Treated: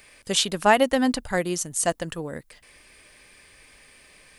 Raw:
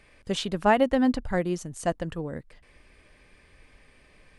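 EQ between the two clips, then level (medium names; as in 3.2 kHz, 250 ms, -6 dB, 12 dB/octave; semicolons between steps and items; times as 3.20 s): RIAA curve recording; bass shelf 170 Hz +9 dB; +3.5 dB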